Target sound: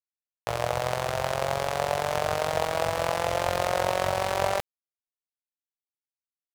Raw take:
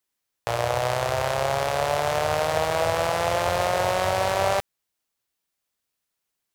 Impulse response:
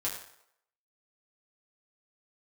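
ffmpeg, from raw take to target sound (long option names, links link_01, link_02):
-af "acrusher=bits=6:mix=0:aa=0.5,tremolo=f=45:d=0.788"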